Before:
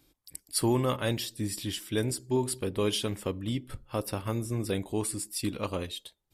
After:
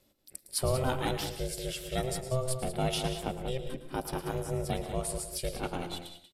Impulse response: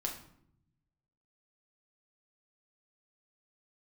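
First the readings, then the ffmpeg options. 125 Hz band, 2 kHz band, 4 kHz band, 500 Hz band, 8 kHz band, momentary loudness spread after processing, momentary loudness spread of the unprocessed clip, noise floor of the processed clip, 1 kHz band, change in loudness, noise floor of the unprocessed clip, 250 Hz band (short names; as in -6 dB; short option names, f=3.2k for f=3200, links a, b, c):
-2.0 dB, -1.0 dB, -2.5 dB, -1.5 dB, -2.5 dB, 7 LU, 8 LU, -67 dBFS, +2.0 dB, -2.5 dB, -73 dBFS, -6.0 dB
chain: -filter_complex "[0:a]aeval=exprs='val(0)*sin(2*PI*260*n/s)':c=same,asplit=2[a][b];[b]adelay=186.6,volume=-8dB,highshelf=f=4k:g=-4.2[c];[a][c]amix=inputs=2:normalize=0,asplit=2[d][e];[1:a]atrim=start_sample=2205,atrim=end_sample=6615,adelay=109[f];[e][f]afir=irnorm=-1:irlink=0,volume=-11.5dB[g];[d][g]amix=inputs=2:normalize=0"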